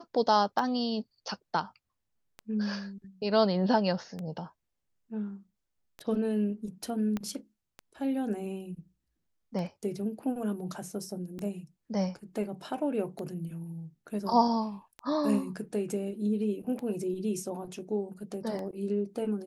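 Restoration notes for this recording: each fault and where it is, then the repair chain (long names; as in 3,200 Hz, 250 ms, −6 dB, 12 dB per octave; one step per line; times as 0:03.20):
scratch tick 33 1/3 rpm
0:07.17: click −20 dBFS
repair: click removal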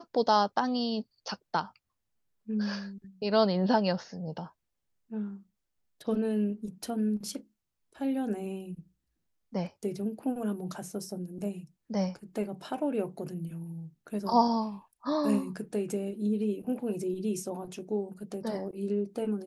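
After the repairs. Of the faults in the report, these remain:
0:07.17: click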